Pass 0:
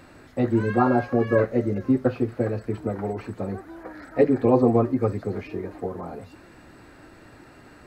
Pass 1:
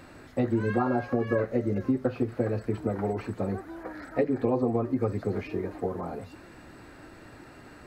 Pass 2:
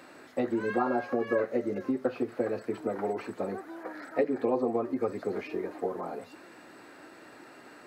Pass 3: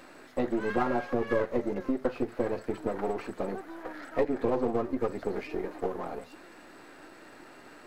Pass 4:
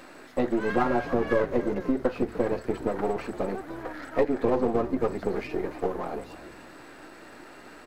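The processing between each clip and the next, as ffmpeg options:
-af "acompressor=threshold=-22dB:ratio=6"
-af "highpass=290"
-af "aeval=exprs='if(lt(val(0),0),0.447*val(0),val(0))':c=same,volume=2.5dB"
-filter_complex "[0:a]asplit=4[a][b][c][d];[b]adelay=299,afreqshift=-67,volume=-15dB[e];[c]adelay=598,afreqshift=-134,volume=-24.1dB[f];[d]adelay=897,afreqshift=-201,volume=-33.2dB[g];[a][e][f][g]amix=inputs=4:normalize=0,volume=3.5dB"

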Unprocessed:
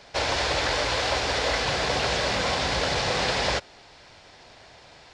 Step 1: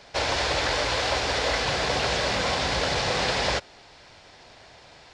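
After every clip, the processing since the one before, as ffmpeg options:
-af anull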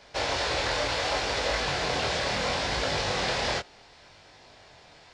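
-af "flanger=delay=19.5:depth=5.9:speed=0.69"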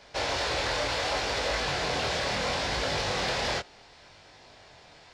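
-af "asoftclip=type=tanh:threshold=-20dB"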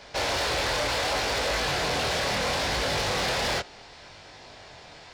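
-af "asoftclip=type=tanh:threshold=-29dB,volume=6dB"

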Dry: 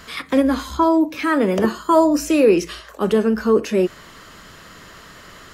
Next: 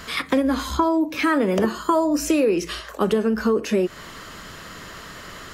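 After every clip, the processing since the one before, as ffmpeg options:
-af "acompressor=threshold=-20dB:ratio=6,volume=3.5dB"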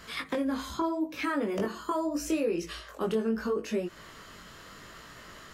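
-af "flanger=delay=17.5:depth=5.1:speed=0.78,volume=-7dB"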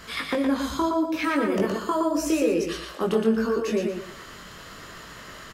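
-af "aecho=1:1:117|234|351|468:0.596|0.173|0.0501|0.0145,volume=5dB"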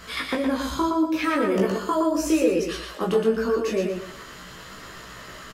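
-filter_complex "[0:a]asplit=2[a][b];[b]adelay=16,volume=-5dB[c];[a][c]amix=inputs=2:normalize=0"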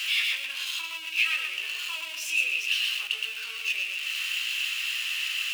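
-af "aeval=exprs='val(0)+0.5*0.0631*sgn(val(0))':c=same,highpass=f=2.7k:t=q:w=11,volume=-8dB"

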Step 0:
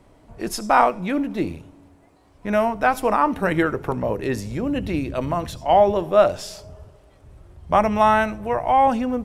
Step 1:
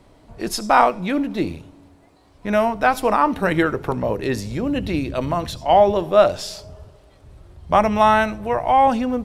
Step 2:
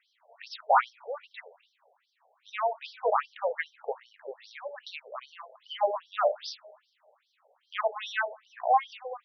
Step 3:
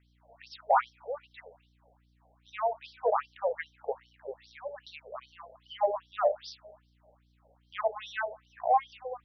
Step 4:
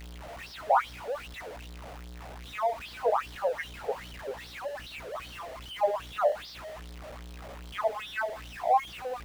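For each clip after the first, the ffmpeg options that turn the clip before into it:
-af "equalizer=f=4.1k:w=1.9:g=5.5,volume=1.5dB"
-af "afftfilt=real='re*between(b*sr/1024,590*pow(4400/590,0.5+0.5*sin(2*PI*2.5*pts/sr))/1.41,590*pow(4400/590,0.5+0.5*sin(2*PI*2.5*pts/sr))*1.41)':imag='im*between(b*sr/1024,590*pow(4400/590,0.5+0.5*sin(2*PI*2.5*pts/sr))/1.41,590*pow(4400/590,0.5+0.5*sin(2*PI*2.5*pts/sr))*1.41)':win_size=1024:overlap=0.75,volume=-4.5dB"
-filter_complex "[0:a]acrossover=split=850|1400[a][b][c];[a]acontrast=75[d];[d][b][c]amix=inputs=3:normalize=0,aeval=exprs='val(0)+0.001*(sin(2*PI*60*n/s)+sin(2*PI*2*60*n/s)/2+sin(2*PI*3*60*n/s)/3+sin(2*PI*4*60*n/s)/4+sin(2*PI*5*60*n/s)/5)':c=same,volume=-6dB"
-filter_complex "[0:a]aeval=exprs='val(0)+0.5*0.0133*sgn(val(0))':c=same,acrossover=split=3500[a][b];[b]acompressor=threshold=-52dB:ratio=4:attack=1:release=60[c];[a][c]amix=inputs=2:normalize=0"

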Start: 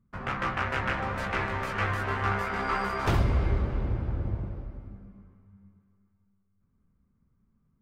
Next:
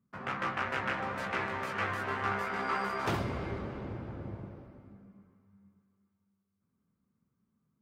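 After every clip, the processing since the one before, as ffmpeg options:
-af "highpass=150,volume=-3.5dB"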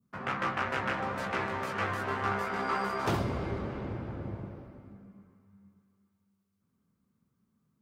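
-af "adynamicequalizer=threshold=0.00447:dfrequency=2100:dqfactor=0.95:tfrequency=2100:tqfactor=0.95:attack=5:release=100:ratio=0.375:range=2:mode=cutabove:tftype=bell,volume=3dB"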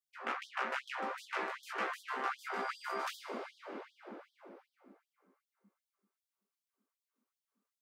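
-af "afftfilt=real='re*gte(b*sr/1024,200*pow(3200/200,0.5+0.5*sin(2*PI*2.6*pts/sr)))':imag='im*gte(b*sr/1024,200*pow(3200/200,0.5+0.5*sin(2*PI*2.6*pts/sr)))':win_size=1024:overlap=0.75,volume=-4dB"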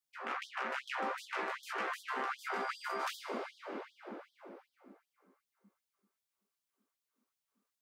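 -af "alimiter=level_in=5.5dB:limit=-24dB:level=0:latency=1:release=34,volume=-5.5dB,volume=2.5dB"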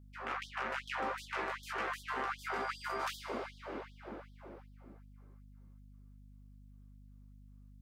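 -af "aeval=exprs='val(0)+0.00178*(sin(2*PI*50*n/s)+sin(2*PI*2*50*n/s)/2+sin(2*PI*3*50*n/s)/3+sin(2*PI*4*50*n/s)/4+sin(2*PI*5*50*n/s)/5)':c=same"

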